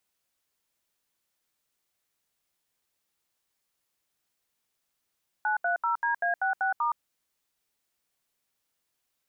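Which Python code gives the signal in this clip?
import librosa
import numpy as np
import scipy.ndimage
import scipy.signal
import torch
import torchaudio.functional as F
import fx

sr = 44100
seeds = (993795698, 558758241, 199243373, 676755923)

y = fx.dtmf(sr, digits='930DA66*', tone_ms=118, gap_ms=75, level_db=-26.5)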